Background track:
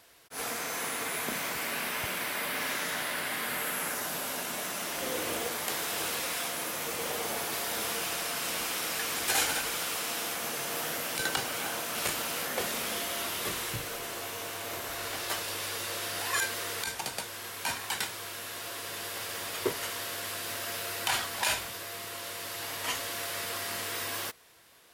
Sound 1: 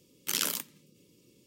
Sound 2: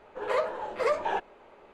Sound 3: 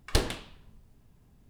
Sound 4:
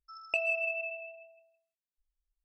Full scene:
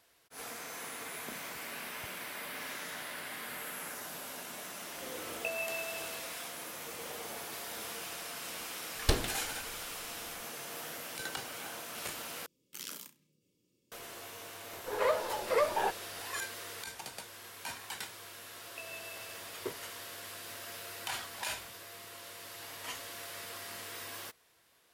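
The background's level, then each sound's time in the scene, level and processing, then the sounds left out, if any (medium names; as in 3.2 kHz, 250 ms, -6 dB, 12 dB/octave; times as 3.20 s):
background track -9 dB
5.11 s: add 4 -4 dB + treble shelf 3.8 kHz -11 dB
8.94 s: add 3 -2.5 dB
12.46 s: replace with 1 -14.5 dB + flutter echo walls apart 5.7 m, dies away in 0.23 s
14.71 s: add 2 -2 dB
18.44 s: add 4 -16.5 dB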